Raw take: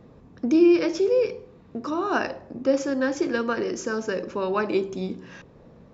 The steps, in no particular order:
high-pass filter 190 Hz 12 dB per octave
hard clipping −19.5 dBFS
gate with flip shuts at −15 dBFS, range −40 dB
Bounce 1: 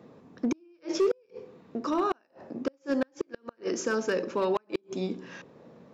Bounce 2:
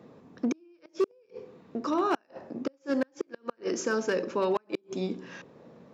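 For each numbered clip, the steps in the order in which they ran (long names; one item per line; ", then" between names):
high-pass filter, then gate with flip, then hard clipping
gate with flip, then hard clipping, then high-pass filter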